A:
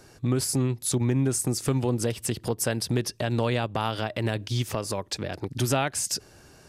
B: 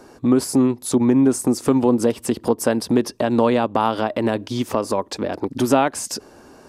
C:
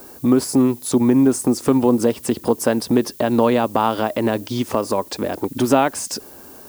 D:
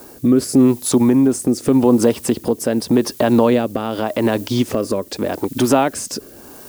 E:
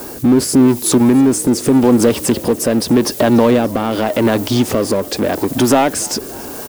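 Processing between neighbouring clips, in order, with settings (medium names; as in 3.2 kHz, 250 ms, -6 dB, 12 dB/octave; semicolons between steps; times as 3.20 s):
ten-band graphic EQ 125 Hz -6 dB, 250 Hz +12 dB, 500 Hz +6 dB, 1 kHz +10 dB
added noise violet -44 dBFS; trim +1 dB
in parallel at +1 dB: peak limiter -12 dBFS, peak gain reduction 10.5 dB; on the sum: rotary cabinet horn 0.85 Hz; trim -1 dB
power-law waveshaper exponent 0.7; frequency-shifting echo 288 ms, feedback 64%, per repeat +64 Hz, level -22.5 dB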